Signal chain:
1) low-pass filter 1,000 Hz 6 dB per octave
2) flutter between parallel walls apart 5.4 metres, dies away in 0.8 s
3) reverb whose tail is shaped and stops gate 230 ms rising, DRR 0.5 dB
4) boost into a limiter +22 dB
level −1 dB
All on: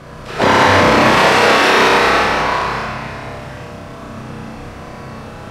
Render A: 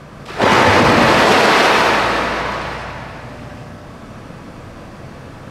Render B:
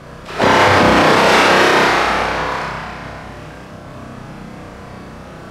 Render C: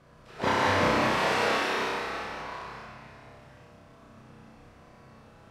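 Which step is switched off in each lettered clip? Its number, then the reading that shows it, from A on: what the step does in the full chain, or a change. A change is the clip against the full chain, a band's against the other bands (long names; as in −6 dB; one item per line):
2, change in momentary loudness spread −2 LU
3, change in momentary loudness spread −3 LU
4, change in crest factor +5.5 dB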